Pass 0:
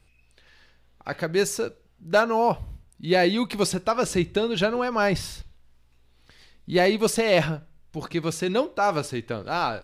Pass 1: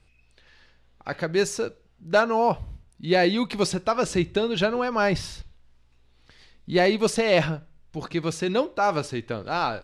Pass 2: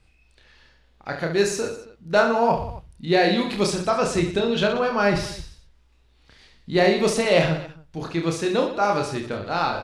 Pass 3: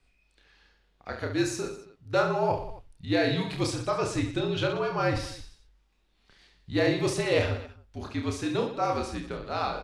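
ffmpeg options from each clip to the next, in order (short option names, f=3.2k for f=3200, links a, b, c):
-af "lowpass=8k"
-af "aecho=1:1:30|69|119.7|185.6|271.3:0.631|0.398|0.251|0.158|0.1"
-af "afreqshift=-60,volume=-6.5dB"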